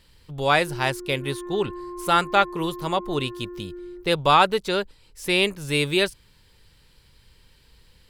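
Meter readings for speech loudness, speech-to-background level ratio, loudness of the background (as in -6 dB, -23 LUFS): -23.0 LUFS, 14.5 dB, -37.5 LUFS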